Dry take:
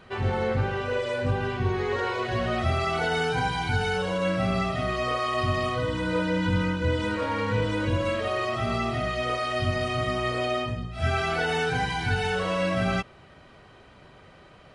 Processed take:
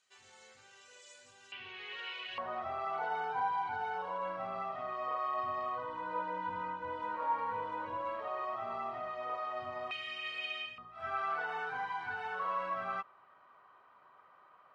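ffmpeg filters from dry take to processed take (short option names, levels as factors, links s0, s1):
-af "asetnsamples=n=441:p=0,asendcmd='1.52 bandpass f 2800;2.38 bandpass f 950;9.91 bandpass f 2700;10.78 bandpass f 1100',bandpass=f=7100:t=q:w=4.3:csg=0"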